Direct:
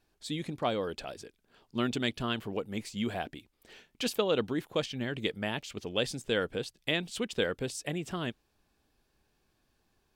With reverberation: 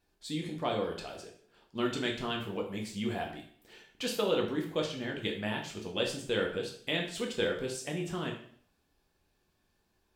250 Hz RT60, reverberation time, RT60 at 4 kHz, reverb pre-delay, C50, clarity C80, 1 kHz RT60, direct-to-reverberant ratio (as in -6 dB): 0.60 s, 0.55 s, 0.50 s, 4 ms, 7.0 dB, 10.5 dB, 0.55 s, -0.5 dB